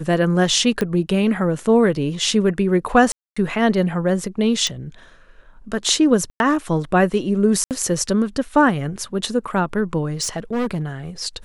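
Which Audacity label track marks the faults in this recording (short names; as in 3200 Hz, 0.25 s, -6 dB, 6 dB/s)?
0.810000	0.810000	pop -9 dBFS
3.120000	3.370000	gap 0.245 s
4.670000	4.670000	pop
6.300000	6.400000	gap 0.101 s
7.640000	7.710000	gap 68 ms
10.210000	10.850000	clipped -18.5 dBFS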